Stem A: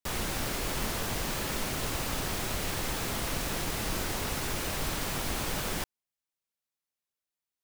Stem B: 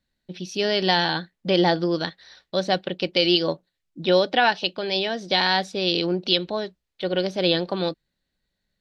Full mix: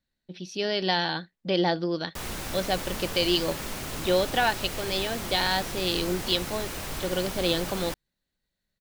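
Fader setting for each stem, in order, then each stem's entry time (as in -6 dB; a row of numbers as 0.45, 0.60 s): -2.0, -5.0 dB; 2.10, 0.00 s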